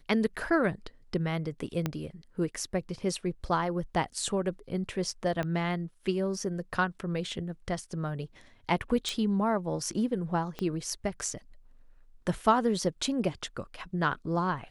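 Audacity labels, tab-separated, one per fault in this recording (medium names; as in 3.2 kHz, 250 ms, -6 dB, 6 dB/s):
1.860000	1.860000	pop -15 dBFS
5.430000	5.430000	pop -20 dBFS
9.090000	9.090000	pop
10.590000	10.590000	pop -21 dBFS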